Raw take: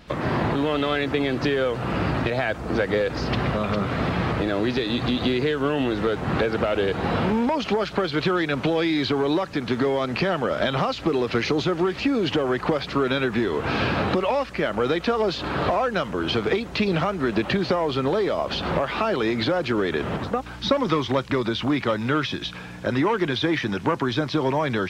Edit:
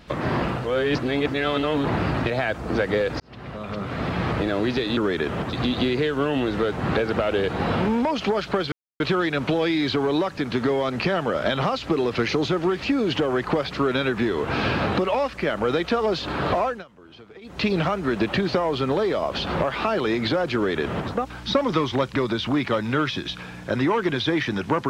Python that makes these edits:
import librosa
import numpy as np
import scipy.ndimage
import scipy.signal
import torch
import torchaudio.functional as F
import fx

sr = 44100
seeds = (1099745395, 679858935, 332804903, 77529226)

y = fx.edit(x, sr, fx.reverse_span(start_s=0.42, length_s=1.56),
    fx.fade_in_span(start_s=3.2, length_s=1.14),
    fx.insert_silence(at_s=8.16, length_s=0.28),
    fx.fade_down_up(start_s=15.79, length_s=0.99, db=-22.5, fade_s=0.21),
    fx.duplicate(start_s=19.71, length_s=0.56, to_s=4.97), tone=tone)